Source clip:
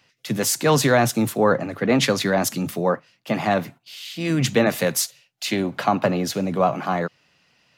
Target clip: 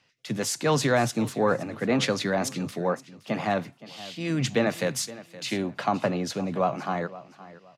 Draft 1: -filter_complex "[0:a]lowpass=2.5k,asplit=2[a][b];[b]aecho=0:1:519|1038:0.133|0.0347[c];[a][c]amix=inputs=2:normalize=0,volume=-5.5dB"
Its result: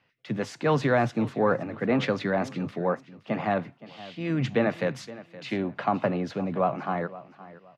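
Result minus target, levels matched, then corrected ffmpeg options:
8000 Hz band -17.0 dB
-filter_complex "[0:a]lowpass=8.8k,asplit=2[a][b];[b]aecho=0:1:519|1038:0.133|0.0347[c];[a][c]amix=inputs=2:normalize=0,volume=-5.5dB"

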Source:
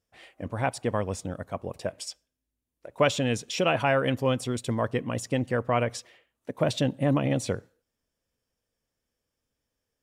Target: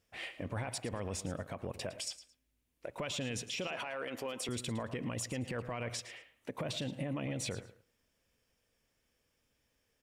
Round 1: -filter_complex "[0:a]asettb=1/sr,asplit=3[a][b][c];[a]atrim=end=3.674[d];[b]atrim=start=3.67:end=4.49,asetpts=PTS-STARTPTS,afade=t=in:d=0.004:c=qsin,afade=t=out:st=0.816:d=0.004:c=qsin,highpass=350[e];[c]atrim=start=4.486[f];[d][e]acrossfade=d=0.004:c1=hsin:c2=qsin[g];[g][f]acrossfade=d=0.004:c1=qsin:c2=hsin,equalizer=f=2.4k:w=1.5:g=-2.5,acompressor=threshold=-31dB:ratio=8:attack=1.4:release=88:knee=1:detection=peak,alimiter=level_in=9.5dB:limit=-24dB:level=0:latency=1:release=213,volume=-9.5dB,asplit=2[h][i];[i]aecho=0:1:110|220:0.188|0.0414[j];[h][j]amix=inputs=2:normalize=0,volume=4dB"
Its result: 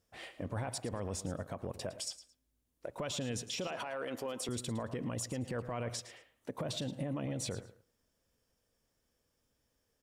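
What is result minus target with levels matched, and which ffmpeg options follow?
2000 Hz band -4.0 dB
-filter_complex "[0:a]asettb=1/sr,asplit=3[a][b][c];[a]atrim=end=3.674[d];[b]atrim=start=3.67:end=4.49,asetpts=PTS-STARTPTS,afade=t=in:d=0.004:c=qsin,afade=t=out:st=0.816:d=0.004:c=qsin,highpass=350[e];[c]atrim=start=4.486[f];[d][e]acrossfade=d=0.004:c1=hsin:c2=qsin[g];[g][f]acrossfade=d=0.004:c1=qsin:c2=hsin,equalizer=f=2.4k:w=1.5:g=6,acompressor=threshold=-31dB:ratio=8:attack=1.4:release=88:knee=1:detection=peak,alimiter=level_in=9.5dB:limit=-24dB:level=0:latency=1:release=213,volume=-9.5dB,asplit=2[h][i];[i]aecho=0:1:110|220:0.188|0.0414[j];[h][j]amix=inputs=2:normalize=0,volume=4dB"

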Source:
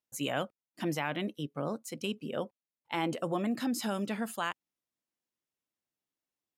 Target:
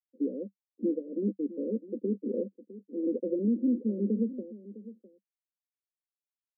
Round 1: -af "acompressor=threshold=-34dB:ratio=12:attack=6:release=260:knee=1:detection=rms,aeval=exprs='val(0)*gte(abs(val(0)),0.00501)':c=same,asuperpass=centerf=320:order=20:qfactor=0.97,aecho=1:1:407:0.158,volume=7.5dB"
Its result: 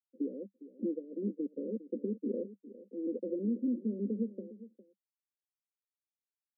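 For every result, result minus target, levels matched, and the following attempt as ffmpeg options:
echo 0.25 s early; compressor: peak gain reduction +5.5 dB
-af "acompressor=threshold=-34dB:ratio=12:attack=6:release=260:knee=1:detection=rms,aeval=exprs='val(0)*gte(abs(val(0)),0.00501)':c=same,asuperpass=centerf=320:order=20:qfactor=0.97,aecho=1:1:657:0.158,volume=7.5dB"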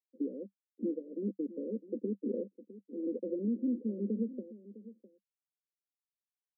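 compressor: peak gain reduction +5.5 dB
-af "acompressor=threshold=-28dB:ratio=12:attack=6:release=260:knee=1:detection=rms,aeval=exprs='val(0)*gte(abs(val(0)),0.00501)':c=same,asuperpass=centerf=320:order=20:qfactor=0.97,aecho=1:1:657:0.158,volume=7.5dB"

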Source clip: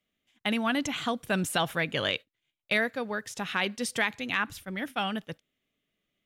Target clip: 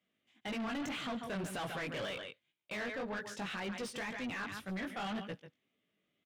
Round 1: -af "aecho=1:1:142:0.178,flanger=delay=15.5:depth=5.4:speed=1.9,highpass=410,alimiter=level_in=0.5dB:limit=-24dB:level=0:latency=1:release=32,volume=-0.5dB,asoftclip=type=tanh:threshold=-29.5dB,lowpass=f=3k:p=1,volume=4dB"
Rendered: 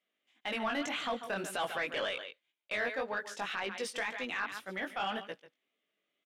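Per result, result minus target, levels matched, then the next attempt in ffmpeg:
125 Hz band -12.0 dB; soft clip: distortion -9 dB
-af "aecho=1:1:142:0.178,flanger=delay=15.5:depth=5.4:speed=1.9,highpass=120,alimiter=level_in=0.5dB:limit=-24dB:level=0:latency=1:release=32,volume=-0.5dB,asoftclip=type=tanh:threshold=-29.5dB,lowpass=f=3k:p=1,volume=4dB"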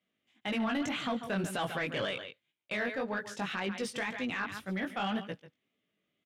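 soft clip: distortion -9 dB
-af "aecho=1:1:142:0.178,flanger=delay=15.5:depth=5.4:speed=1.9,highpass=120,alimiter=level_in=0.5dB:limit=-24dB:level=0:latency=1:release=32,volume=-0.5dB,asoftclip=type=tanh:threshold=-39.5dB,lowpass=f=3k:p=1,volume=4dB"

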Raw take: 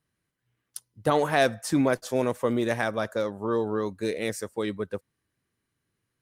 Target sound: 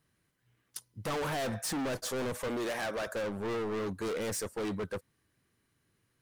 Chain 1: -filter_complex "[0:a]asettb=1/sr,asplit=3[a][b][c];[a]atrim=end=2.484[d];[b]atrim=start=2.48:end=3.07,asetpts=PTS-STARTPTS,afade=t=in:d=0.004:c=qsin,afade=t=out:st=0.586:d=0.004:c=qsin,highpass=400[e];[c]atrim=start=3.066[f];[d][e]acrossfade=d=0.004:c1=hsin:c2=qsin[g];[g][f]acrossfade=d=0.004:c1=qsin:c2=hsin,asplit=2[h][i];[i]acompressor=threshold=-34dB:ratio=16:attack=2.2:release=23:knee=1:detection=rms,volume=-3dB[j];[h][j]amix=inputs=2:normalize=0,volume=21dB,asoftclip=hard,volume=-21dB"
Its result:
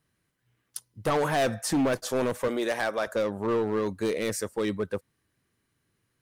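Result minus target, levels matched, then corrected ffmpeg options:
overloaded stage: distortion -7 dB
-filter_complex "[0:a]asettb=1/sr,asplit=3[a][b][c];[a]atrim=end=2.484[d];[b]atrim=start=2.48:end=3.07,asetpts=PTS-STARTPTS,afade=t=in:d=0.004:c=qsin,afade=t=out:st=0.586:d=0.004:c=qsin,highpass=400[e];[c]atrim=start=3.066[f];[d][e]acrossfade=d=0.004:c1=hsin:c2=qsin[g];[g][f]acrossfade=d=0.004:c1=qsin:c2=hsin,asplit=2[h][i];[i]acompressor=threshold=-34dB:ratio=16:attack=2.2:release=23:knee=1:detection=rms,volume=-3dB[j];[h][j]amix=inputs=2:normalize=0,volume=32dB,asoftclip=hard,volume=-32dB"

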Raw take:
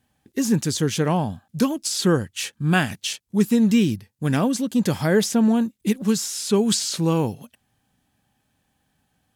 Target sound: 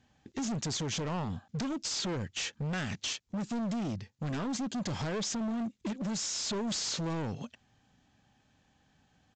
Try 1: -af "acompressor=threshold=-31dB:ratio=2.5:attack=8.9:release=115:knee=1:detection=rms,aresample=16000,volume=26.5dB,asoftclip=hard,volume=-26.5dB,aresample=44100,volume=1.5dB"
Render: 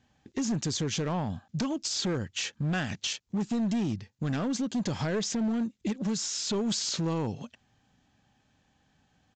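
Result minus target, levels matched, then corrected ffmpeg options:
overloaded stage: distortion -7 dB
-af "acompressor=threshold=-31dB:ratio=2.5:attack=8.9:release=115:knee=1:detection=rms,aresample=16000,volume=33dB,asoftclip=hard,volume=-33dB,aresample=44100,volume=1.5dB"

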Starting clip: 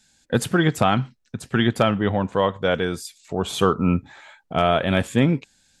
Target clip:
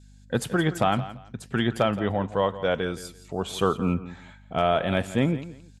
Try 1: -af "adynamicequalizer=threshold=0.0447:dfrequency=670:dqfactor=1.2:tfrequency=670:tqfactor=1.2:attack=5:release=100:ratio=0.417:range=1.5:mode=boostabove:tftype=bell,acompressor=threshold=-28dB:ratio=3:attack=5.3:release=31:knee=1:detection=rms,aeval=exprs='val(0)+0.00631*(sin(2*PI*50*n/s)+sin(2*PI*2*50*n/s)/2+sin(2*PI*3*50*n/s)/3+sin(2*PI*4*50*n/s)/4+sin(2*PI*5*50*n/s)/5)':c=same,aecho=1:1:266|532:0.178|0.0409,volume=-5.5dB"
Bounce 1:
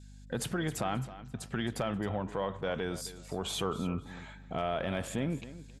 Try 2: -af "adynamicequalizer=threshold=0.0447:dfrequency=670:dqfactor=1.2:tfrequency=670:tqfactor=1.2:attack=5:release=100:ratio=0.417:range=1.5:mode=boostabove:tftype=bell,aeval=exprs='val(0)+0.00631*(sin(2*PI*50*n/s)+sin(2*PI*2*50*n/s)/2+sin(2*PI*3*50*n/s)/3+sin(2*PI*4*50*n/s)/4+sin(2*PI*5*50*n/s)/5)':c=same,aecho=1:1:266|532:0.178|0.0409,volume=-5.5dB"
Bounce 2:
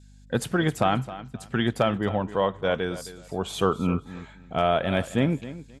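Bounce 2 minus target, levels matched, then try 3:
echo 96 ms late
-af "adynamicequalizer=threshold=0.0447:dfrequency=670:dqfactor=1.2:tfrequency=670:tqfactor=1.2:attack=5:release=100:ratio=0.417:range=1.5:mode=boostabove:tftype=bell,aeval=exprs='val(0)+0.00631*(sin(2*PI*50*n/s)+sin(2*PI*2*50*n/s)/2+sin(2*PI*3*50*n/s)/3+sin(2*PI*4*50*n/s)/4+sin(2*PI*5*50*n/s)/5)':c=same,aecho=1:1:170|340:0.178|0.0409,volume=-5.5dB"

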